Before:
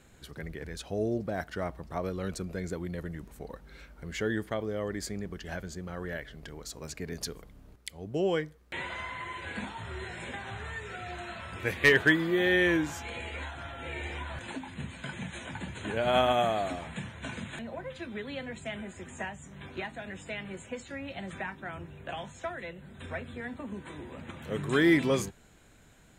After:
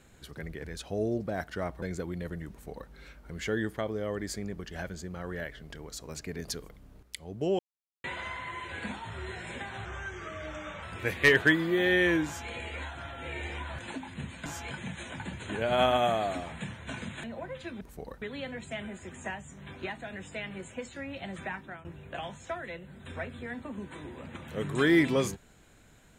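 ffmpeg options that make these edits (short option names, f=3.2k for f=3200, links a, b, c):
-filter_complex "[0:a]asplit=11[a][b][c][d][e][f][g][h][i][j][k];[a]atrim=end=1.822[l];[b]atrim=start=2.548:end=8.32,asetpts=PTS-STARTPTS,afade=t=out:st=5.768:d=0.004:c=hsin[m];[c]atrim=start=8.32:end=8.77,asetpts=PTS-STARTPTS,volume=0[n];[d]atrim=start=8.77:end=10.584,asetpts=PTS-STARTPTS,afade=t=in:d=0.004:c=hsin[o];[e]atrim=start=10.58:end=11.43,asetpts=PTS-STARTPTS,asetrate=38367,aresample=44100,atrim=end_sample=43086,asetpts=PTS-STARTPTS[p];[f]atrim=start=11.426:end=15.062[q];[g]atrim=start=12.858:end=13.112[r];[h]atrim=start=15.058:end=18.162[s];[i]atrim=start=3.228:end=3.642[t];[j]atrim=start=18.158:end=21.79,asetpts=PTS-STARTPTS,afade=t=out:st=3.332:d=0.3:c=qsin:silence=0.188365[u];[k]atrim=start=21.79,asetpts=PTS-STARTPTS,afade=t=in:d=0.004:c=hsin:silence=0.188365[v];[m][n][o]concat=n=3:v=0:a=1[w];[l][w]acrossfade=d=0.004:c1=hsin:c2=hsin[x];[x][p]acrossfade=d=0.004:c1=hsin:c2=hsin[y];[y][q]acrossfade=d=0.004:c1=hsin:c2=hsin[z];[z][r]acrossfade=d=0.004:c1=hsin:c2=hsin[aa];[aa][s]acrossfade=d=0.004:c1=hsin:c2=hsin[ab];[ab][t]acrossfade=d=0.004:c1=hsin:c2=hsin[ac];[u][v]concat=n=2:v=0:a=1[ad];[ac][ad]acrossfade=d=0.004:c1=hsin:c2=hsin"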